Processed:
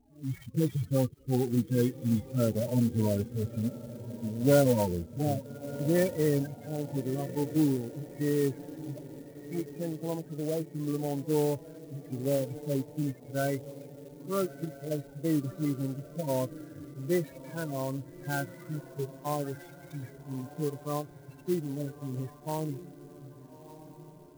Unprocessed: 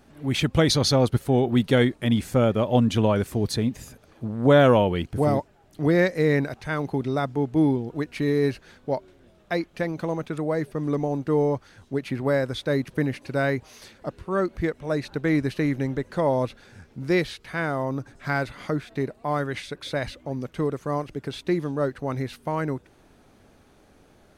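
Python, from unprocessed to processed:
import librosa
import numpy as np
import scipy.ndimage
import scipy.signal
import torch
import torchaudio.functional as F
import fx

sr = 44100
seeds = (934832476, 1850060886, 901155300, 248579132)

y = fx.hpss_only(x, sr, part='harmonic')
y = fx.wow_flutter(y, sr, seeds[0], rate_hz=2.1, depth_cents=22.0)
y = fx.spec_topn(y, sr, count=16)
y = fx.echo_diffused(y, sr, ms=1264, feedback_pct=48, wet_db=-14.5)
y = fx.clock_jitter(y, sr, seeds[1], jitter_ms=0.054)
y = y * librosa.db_to_amplitude(-5.5)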